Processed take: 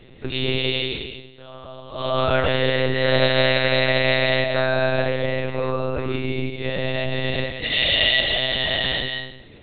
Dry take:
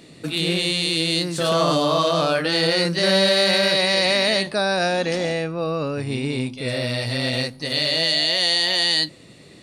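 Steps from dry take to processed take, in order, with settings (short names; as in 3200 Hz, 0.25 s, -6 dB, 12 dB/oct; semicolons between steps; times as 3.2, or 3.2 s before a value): 0.78–2.19 dip -20.5 dB, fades 0.27 s; 7.54–8.2 tilt shelf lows -7.5 dB, about 870 Hz; reverb RT60 0.70 s, pre-delay 0.11 s, DRR 5.5 dB; monotone LPC vocoder at 8 kHz 130 Hz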